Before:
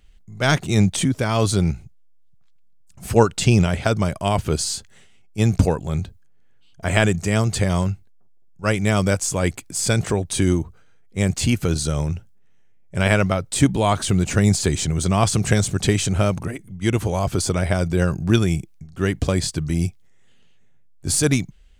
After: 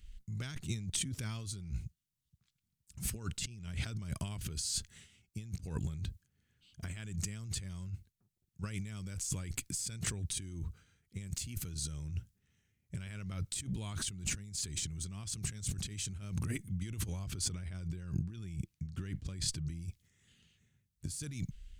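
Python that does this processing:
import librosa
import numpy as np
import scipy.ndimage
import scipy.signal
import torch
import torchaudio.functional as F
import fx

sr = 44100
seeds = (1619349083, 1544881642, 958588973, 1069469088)

y = fx.high_shelf(x, sr, hz=9900.0, db=6.0, at=(11.25, 11.69))
y = fx.high_shelf(y, sr, hz=5400.0, db=-7.0, at=(17.13, 19.82))
y = fx.edit(y, sr, fx.fade_in_from(start_s=0.55, length_s=0.78, floor_db=-13.0), tone=tone)
y = fx.tone_stack(y, sr, knobs='6-0-2')
y = fx.over_compress(y, sr, threshold_db=-45.0, ratio=-1.0)
y = y * 10.0 ** (5.0 / 20.0)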